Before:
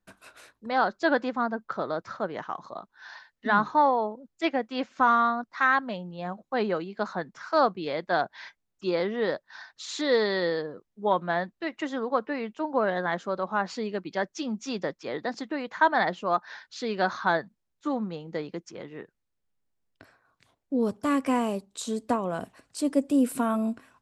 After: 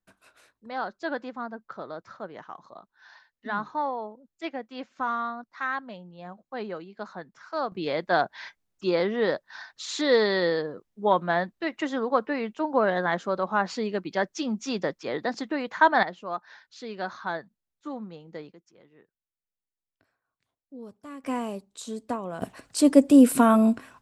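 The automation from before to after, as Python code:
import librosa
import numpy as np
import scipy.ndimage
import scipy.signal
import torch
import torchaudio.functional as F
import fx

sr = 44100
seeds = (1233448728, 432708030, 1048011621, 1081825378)

y = fx.gain(x, sr, db=fx.steps((0.0, -7.5), (7.72, 2.5), (16.03, -7.0), (18.52, -16.5), (21.24, -4.5), (22.42, 8.0)))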